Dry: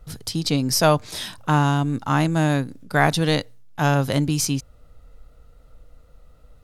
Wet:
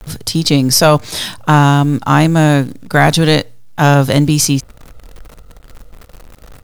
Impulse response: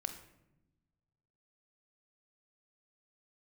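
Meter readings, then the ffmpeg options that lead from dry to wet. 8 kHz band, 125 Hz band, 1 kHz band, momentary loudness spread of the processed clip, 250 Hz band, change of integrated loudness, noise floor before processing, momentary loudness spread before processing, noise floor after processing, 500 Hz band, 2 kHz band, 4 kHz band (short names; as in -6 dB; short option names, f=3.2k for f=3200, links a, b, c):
+10.0 dB, +9.5 dB, +8.5 dB, 8 LU, +9.5 dB, +9.5 dB, -51 dBFS, 9 LU, -41 dBFS, +9.0 dB, +8.5 dB, +10.0 dB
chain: -af "acrusher=bits=9:dc=4:mix=0:aa=0.000001,apsyclip=11.5dB,volume=-1.5dB"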